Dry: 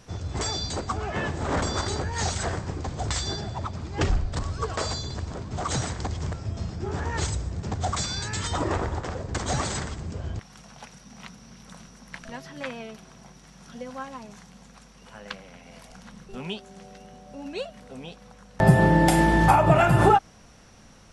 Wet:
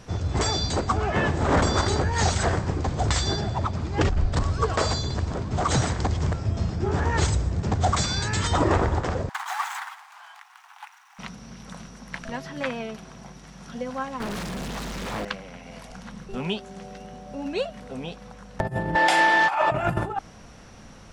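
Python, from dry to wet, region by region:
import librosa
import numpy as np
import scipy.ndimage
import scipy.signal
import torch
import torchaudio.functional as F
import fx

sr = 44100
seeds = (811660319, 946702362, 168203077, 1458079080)

y = fx.chain(x, sr, fx.median_filter(points=9),
    fx.steep_highpass(hz=800.0, slope=72), at=(9.29, 11.19))
y = fx.chain(y, sr, fx.power_curve(exponent=0.35),
    fx.doppler_dist(depth_ms=0.92), at=(14.2, 15.25))
y = fx.chain(y, sr, fx.bandpass_edges(low_hz=770.0, high_hz=4500.0),
    fx.high_shelf(hz=2300.0, db=9.0),
    fx.transformer_sat(knee_hz=670.0), at=(18.95, 19.72))
y = fx.high_shelf(y, sr, hz=4100.0, db=-5.5)
y = fx.over_compress(y, sr, threshold_db=-23.0, ratio=-0.5)
y = y * 10.0 ** (4.0 / 20.0)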